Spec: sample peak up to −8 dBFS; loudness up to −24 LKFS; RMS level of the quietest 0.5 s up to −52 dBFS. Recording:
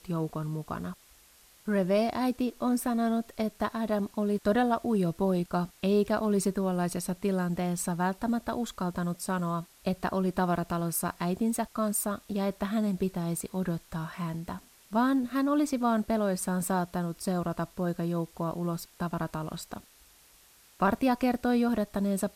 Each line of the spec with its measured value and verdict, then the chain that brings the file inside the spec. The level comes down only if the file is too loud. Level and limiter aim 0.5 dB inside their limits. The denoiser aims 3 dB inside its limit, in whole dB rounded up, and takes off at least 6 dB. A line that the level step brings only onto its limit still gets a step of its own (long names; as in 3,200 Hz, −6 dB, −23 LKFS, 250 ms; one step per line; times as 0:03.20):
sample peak −14.0 dBFS: in spec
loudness −30.0 LKFS: in spec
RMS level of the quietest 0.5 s −59 dBFS: in spec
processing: no processing needed